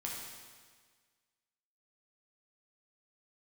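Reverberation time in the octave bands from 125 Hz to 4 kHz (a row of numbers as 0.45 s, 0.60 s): 1.6 s, 1.6 s, 1.6 s, 1.6 s, 1.6 s, 1.6 s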